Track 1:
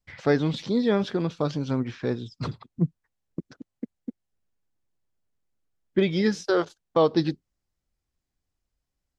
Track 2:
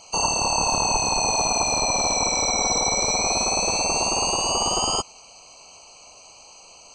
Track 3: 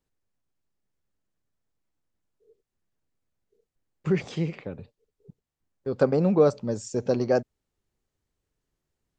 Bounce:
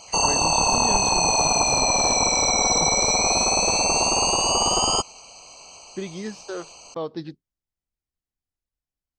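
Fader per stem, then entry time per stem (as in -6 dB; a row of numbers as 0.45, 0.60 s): -10.0 dB, +2.0 dB, off; 0.00 s, 0.00 s, off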